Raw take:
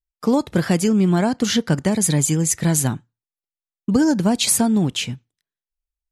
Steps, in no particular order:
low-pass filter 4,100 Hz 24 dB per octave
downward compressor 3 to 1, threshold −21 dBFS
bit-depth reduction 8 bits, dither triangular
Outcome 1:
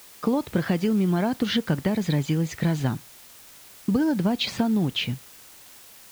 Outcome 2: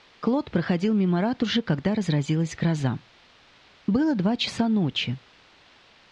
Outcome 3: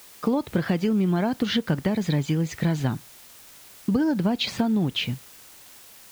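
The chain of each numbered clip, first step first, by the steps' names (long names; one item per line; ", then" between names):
low-pass filter, then downward compressor, then bit-depth reduction
bit-depth reduction, then low-pass filter, then downward compressor
low-pass filter, then bit-depth reduction, then downward compressor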